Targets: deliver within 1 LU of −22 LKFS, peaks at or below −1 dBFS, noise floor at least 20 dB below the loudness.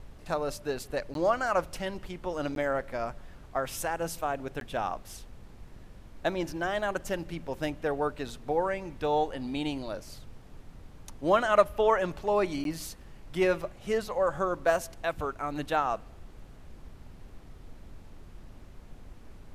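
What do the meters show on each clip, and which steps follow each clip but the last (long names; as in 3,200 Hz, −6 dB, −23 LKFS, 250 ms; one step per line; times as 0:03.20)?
number of dropouts 4; longest dropout 12 ms; background noise floor −50 dBFS; target noise floor −51 dBFS; integrated loudness −30.5 LKFS; sample peak −7.5 dBFS; target loudness −22.0 LKFS
→ repair the gap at 0:01.14/0:02.55/0:04.60/0:12.64, 12 ms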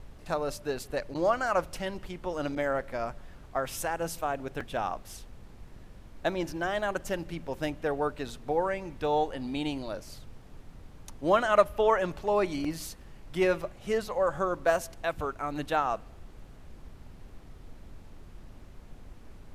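number of dropouts 0; background noise floor −50 dBFS; target noise floor −51 dBFS
→ noise reduction from a noise print 6 dB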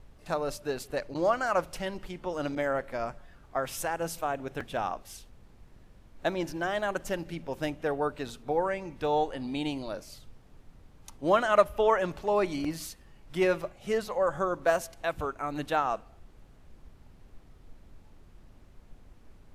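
background noise floor −56 dBFS; integrated loudness −30.5 LKFS; sample peak −7.5 dBFS; target loudness −22.0 LKFS
→ level +8.5 dB
brickwall limiter −1 dBFS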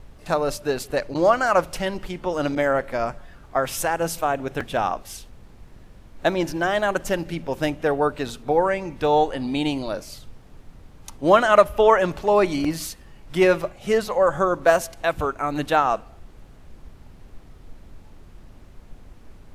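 integrated loudness −22.5 LKFS; sample peak −1.0 dBFS; background noise floor −47 dBFS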